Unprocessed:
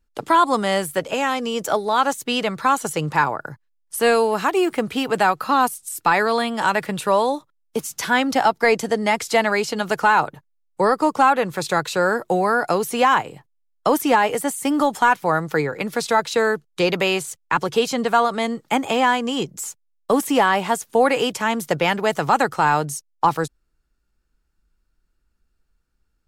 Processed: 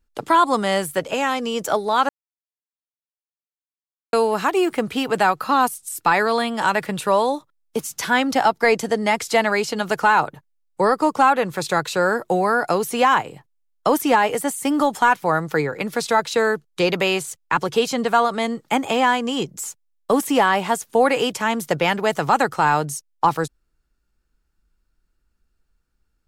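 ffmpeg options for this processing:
ffmpeg -i in.wav -filter_complex "[0:a]asplit=3[link_01][link_02][link_03];[link_01]atrim=end=2.09,asetpts=PTS-STARTPTS,afade=type=out:start_time=2.086:duration=0.004:curve=hsin[link_04];[link_02]atrim=start=2.09:end=4.13,asetpts=PTS-STARTPTS,volume=0[link_05];[link_03]atrim=start=4.13,asetpts=PTS-STARTPTS,afade=type=in:duration=0.004:curve=hsin[link_06];[link_04][link_05][link_06]concat=n=3:v=0:a=1" out.wav

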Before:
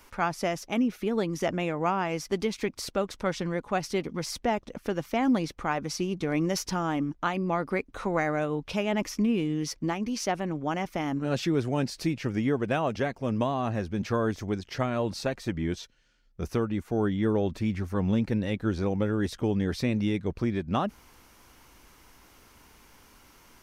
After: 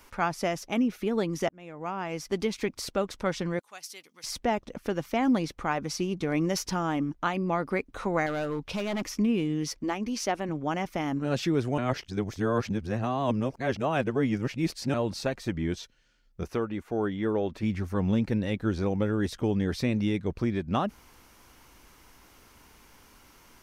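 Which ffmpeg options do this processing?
ffmpeg -i in.wav -filter_complex "[0:a]asettb=1/sr,asplit=3[link_01][link_02][link_03];[link_01]atrim=end=3.594[link_04];[link_02]atrim=start=3.59:end=4.24,asetpts=PTS-STARTPTS,afade=type=in:duration=0.004:curve=qsin,afade=type=out:start_time=0.646:duration=0.004:curve=qsin,aderivative[link_05];[link_03]atrim=start=4.236[link_06];[link_04][link_05]acrossfade=duration=0.004:curve1=hsin:curve2=qsin[link_07];[link_07][link_06]acrossfade=duration=0.004:curve1=qsin:curve2=hsin,asettb=1/sr,asplit=3[link_08][link_09][link_10];[link_08]atrim=end=8.264[link_11];[link_09]atrim=start=8.26:end=9.05,asetpts=PTS-STARTPTS,afade=type=in:duration=0.004:curve=qsin,afade=type=out:start_time=0.786:duration=0.004:curve=qsin,asoftclip=type=hard:threshold=-26.5dB[link_12];[link_10]atrim=start=9.046[link_13];[link_11][link_12]acrossfade=duration=0.004:curve1=hsin:curve2=qsin[link_14];[link_14][link_13]acrossfade=duration=0.004:curve1=qsin:curve2=hsin,asettb=1/sr,asplit=3[link_15][link_16][link_17];[link_15]atrim=end=9.734[link_18];[link_16]atrim=start=9.73:end=10.49,asetpts=PTS-STARTPTS,afade=type=in:duration=0.004:curve=qsin,afade=type=out:start_time=0.756:duration=0.004:curve=qsin,equalizer=frequency=160:width_type=o:width=0.23:gain=-14[link_19];[link_17]atrim=start=10.486[link_20];[link_18][link_19]acrossfade=duration=0.004:curve1=hsin:curve2=qsin[link_21];[link_21][link_20]acrossfade=duration=0.004:curve1=qsin:curve2=hsin,asettb=1/sr,asplit=3[link_22][link_23][link_24];[link_22]atrim=end=16.434[link_25];[link_23]atrim=start=16.43:end=17.63,asetpts=PTS-STARTPTS,afade=type=in:duration=0.004:curve=qsin,afade=type=out:start_time=1.196:duration=0.004:curve=qsin,bass=frequency=250:gain=-7,treble=frequency=4000:gain=-6[link_26];[link_24]atrim=start=17.626[link_27];[link_25][link_26]acrossfade=duration=0.004:curve1=hsin:curve2=qsin[link_28];[link_28][link_27]acrossfade=duration=0.004:curve1=qsin:curve2=hsin,asplit=4[link_29][link_30][link_31][link_32];[link_29]atrim=end=1.49,asetpts=PTS-STARTPTS,afade=type=out:start_time=1.486:duration=0.004:curve=hsin[link_33];[link_30]atrim=start=1.49:end=11.782,asetpts=PTS-STARTPTS,afade=type=in:duration=0.94[link_34];[link_31]atrim=start=11.778:end=14.942,asetpts=PTS-STARTPTS,areverse[link_35];[link_32]atrim=start=14.938[link_36];[link_33][link_34]concat=n=2:v=0:a=1[link_37];[link_37][link_35]acrossfade=duration=0.004:curve1=hsin:curve2=hsin[link_38];[link_38][link_36]acrossfade=duration=0.004:curve1=hsin:curve2=hsin" out.wav

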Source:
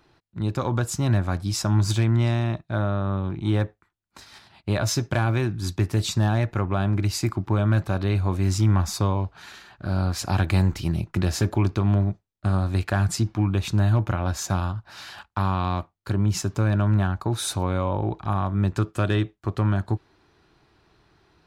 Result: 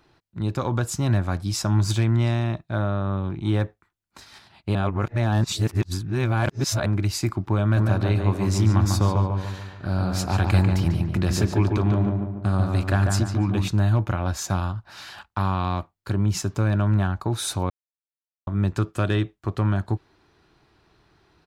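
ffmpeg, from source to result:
ffmpeg -i in.wav -filter_complex "[0:a]asplit=3[link_01][link_02][link_03];[link_01]afade=type=out:start_time=7.76:duration=0.02[link_04];[link_02]asplit=2[link_05][link_06];[link_06]adelay=145,lowpass=frequency=2100:poles=1,volume=-3dB,asplit=2[link_07][link_08];[link_08]adelay=145,lowpass=frequency=2100:poles=1,volume=0.5,asplit=2[link_09][link_10];[link_10]adelay=145,lowpass=frequency=2100:poles=1,volume=0.5,asplit=2[link_11][link_12];[link_12]adelay=145,lowpass=frequency=2100:poles=1,volume=0.5,asplit=2[link_13][link_14];[link_14]adelay=145,lowpass=frequency=2100:poles=1,volume=0.5,asplit=2[link_15][link_16];[link_16]adelay=145,lowpass=frequency=2100:poles=1,volume=0.5,asplit=2[link_17][link_18];[link_18]adelay=145,lowpass=frequency=2100:poles=1,volume=0.5[link_19];[link_05][link_07][link_09][link_11][link_13][link_15][link_17][link_19]amix=inputs=8:normalize=0,afade=type=in:start_time=7.76:duration=0.02,afade=type=out:start_time=13.67:duration=0.02[link_20];[link_03]afade=type=in:start_time=13.67:duration=0.02[link_21];[link_04][link_20][link_21]amix=inputs=3:normalize=0,asplit=5[link_22][link_23][link_24][link_25][link_26];[link_22]atrim=end=4.752[link_27];[link_23]atrim=start=4.748:end=6.862,asetpts=PTS-STARTPTS,areverse[link_28];[link_24]atrim=start=6.858:end=17.7,asetpts=PTS-STARTPTS,afade=type=out:start_time=10.838:duration=0.004:curve=hsin[link_29];[link_25]atrim=start=17.7:end=18.47,asetpts=PTS-STARTPTS,volume=0[link_30];[link_26]atrim=start=18.47,asetpts=PTS-STARTPTS,afade=type=in:duration=0.004:curve=hsin[link_31];[link_27][link_28]acrossfade=duration=0.004:curve1=hsin:curve2=hsin[link_32];[link_29][link_30][link_31]concat=n=3:v=0:a=1[link_33];[link_32][link_33]acrossfade=duration=0.004:curve1=hsin:curve2=hsin" out.wav

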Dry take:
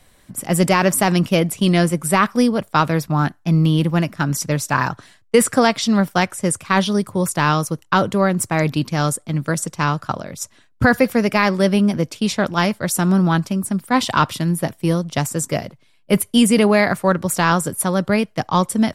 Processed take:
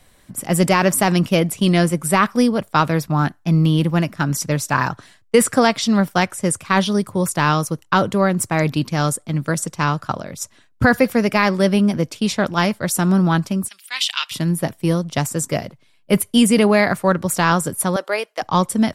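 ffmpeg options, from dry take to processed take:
ffmpeg -i in.wav -filter_complex "[0:a]asplit=3[link_01][link_02][link_03];[link_01]afade=type=out:start_time=13.67:duration=0.02[link_04];[link_02]highpass=frequency=2800:width_type=q:width=2.3,afade=type=in:start_time=13.67:duration=0.02,afade=type=out:start_time=14.31:duration=0.02[link_05];[link_03]afade=type=in:start_time=14.31:duration=0.02[link_06];[link_04][link_05][link_06]amix=inputs=3:normalize=0,asettb=1/sr,asplit=3[link_07][link_08][link_09];[link_07]atrim=end=17.964[link_10];[link_08]atrim=start=17.96:end=18.42,asetpts=PTS-STARTPTS,afade=type=in:duration=0.004:curve=qsin,afade=type=out:start_time=0.456:duration=0.004:curve=qsin,highpass=frequency=430:width=0.5412,highpass=frequency=430:width=1.3066[link_11];[link_09]atrim=start=18.416[link_12];[link_10][link_11]acrossfade=duration=0.004:curve1=hsin:curve2=qsin[link_13];[link_13][link_12]acrossfade=duration=0.004:curve1=qsin:curve2=hsin" out.wav

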